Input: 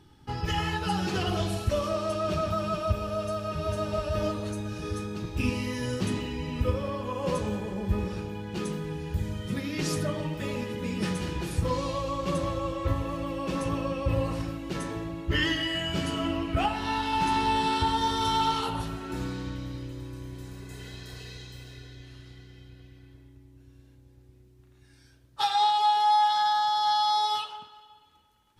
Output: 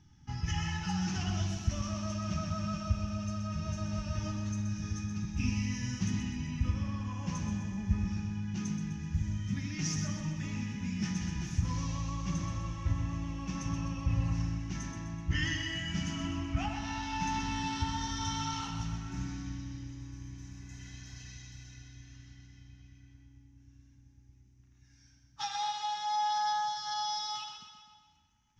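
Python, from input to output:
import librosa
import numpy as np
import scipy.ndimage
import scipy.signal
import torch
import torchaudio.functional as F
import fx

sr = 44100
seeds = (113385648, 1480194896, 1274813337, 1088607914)

y = fx.curve_eq(x, sr, hz=(200.0, 300.0, 490.0, 720.0, 1300.0, 2000.0, 4300.0, 6100.0, 8800.0), db=(0, -8, -26, -9, -9, -3, -10, 8, -22))
y = fx.echo_feedback(y, sr, ms=126, feedback_pct=55, wet_db=-7.5)
y = y * librosa.db_to_amplitude(-2.5)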